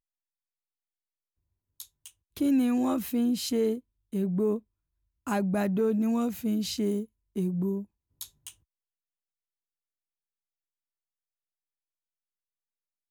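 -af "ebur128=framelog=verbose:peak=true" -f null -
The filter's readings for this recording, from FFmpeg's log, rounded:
Integrated loudness:
  I:         -28.6 LUFS
  Threshold: -39.7 LUFS
Loudness range:
  LRA:         8.6 LU
  Threshold: -50.8 LUFS
  LRA low:   -37.5 LUFS
  LRA high:  -28.8 LUFS
True peak:
  Peak:      -16.9 dBFS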